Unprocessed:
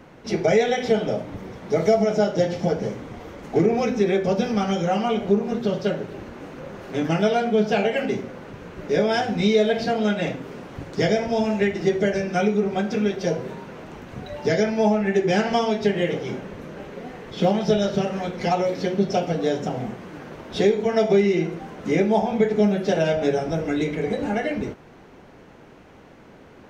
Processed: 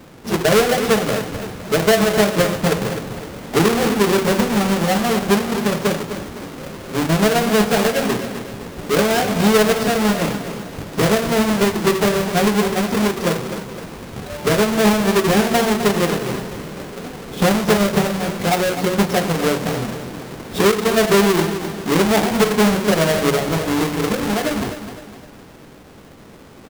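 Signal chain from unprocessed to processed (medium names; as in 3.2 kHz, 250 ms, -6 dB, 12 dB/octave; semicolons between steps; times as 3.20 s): square wave that keeps the level; feedback delay 256 ms, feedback 43%, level -10.5 dB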